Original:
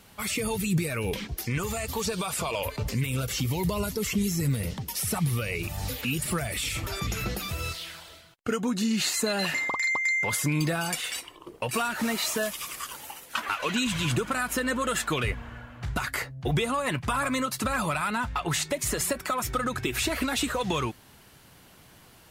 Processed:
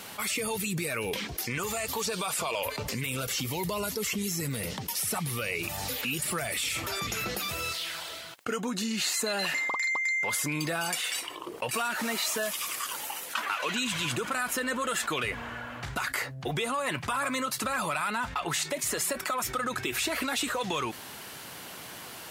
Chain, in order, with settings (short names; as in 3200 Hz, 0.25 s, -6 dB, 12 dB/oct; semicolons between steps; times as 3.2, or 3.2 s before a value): HPF 400 Hz 6 dB/oct; fast leveller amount 50%; gain -3.5 dB